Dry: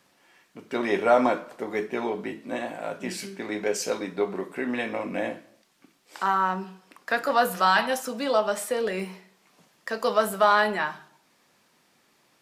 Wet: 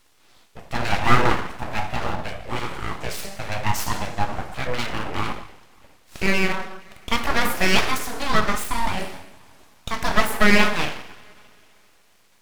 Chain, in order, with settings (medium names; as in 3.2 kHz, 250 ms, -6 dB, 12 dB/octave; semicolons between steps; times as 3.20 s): two-slope reverb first 0.74 s, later 2.8 s, from -18 dB, DRR 5.5 dB; full-wave rectifier; trim +5 dB